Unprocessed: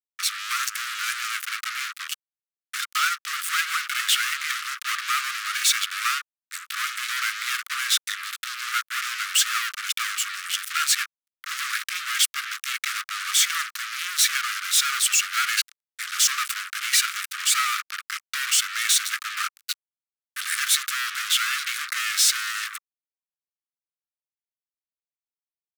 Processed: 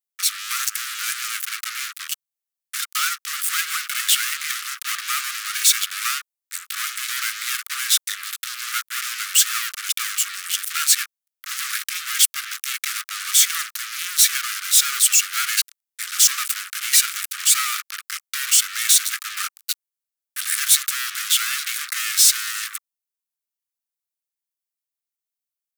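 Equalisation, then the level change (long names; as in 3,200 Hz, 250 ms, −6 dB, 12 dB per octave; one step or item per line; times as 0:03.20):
high-pass filter 980 Hz 6 dB per octave
high-shelf EQ 6,000 Hz +11 dB
−1.0 dB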